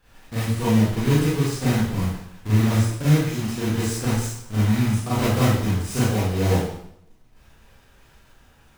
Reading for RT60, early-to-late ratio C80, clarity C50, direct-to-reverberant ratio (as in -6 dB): 0.75 s, 3.0 dB, -2.0 dB, -10.5 dB